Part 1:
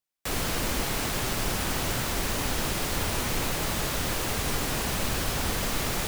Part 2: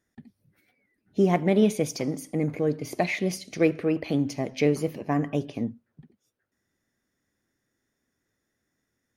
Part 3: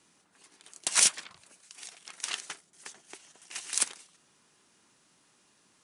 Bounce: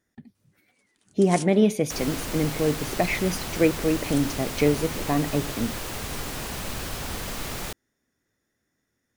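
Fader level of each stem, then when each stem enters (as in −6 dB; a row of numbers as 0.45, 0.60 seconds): −4.0, +1.5, −14.0 decibels; 1.65, 0.00, 0.35 seconds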